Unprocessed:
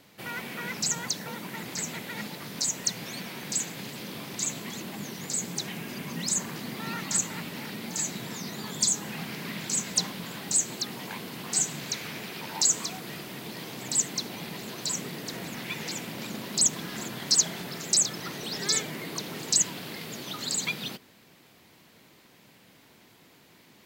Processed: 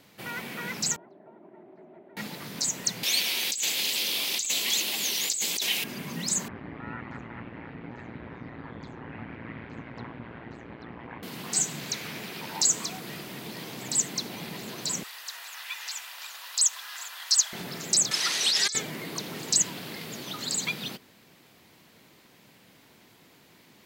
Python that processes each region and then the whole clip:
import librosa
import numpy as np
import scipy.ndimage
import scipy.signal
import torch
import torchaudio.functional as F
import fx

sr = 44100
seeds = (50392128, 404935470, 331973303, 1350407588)

y = fx.chain(x, sr, fx.double_bandpass(hz=490.0, octaves=0.72),
    fx.air_absorb(metres=470.0), at=(0.96, 2.17))
y = fx.chain(y, sr, fx.highpass(hz=410.0, slope=12),
    fx.high_shelf_res(hz=2100.0, db=11.0, q=1.5),
    fx.over_compress(threshold_db=-26.0, ratio=-1.0), at=(3.03, 5.84))
y = fx.chain(y, sr, fx.lowpass(hz=2100.0, slope=24),
    fx.ring_mod(carrier_hz=58.0), at=(6.48, 11.23))
y = fx.chain(y, sr, fx.highpass(hz=960.0, slope=24),
    fx.notch(hz=2200.0, q=12.0), at=(15.03, 17.53))
y = fx.chain(y, sr, fx.weighting(curve='ITU-R 468'),
    fx.over_compress(threshold_db=-26.0, ratio=-1.0), at=(18.11, 18.75))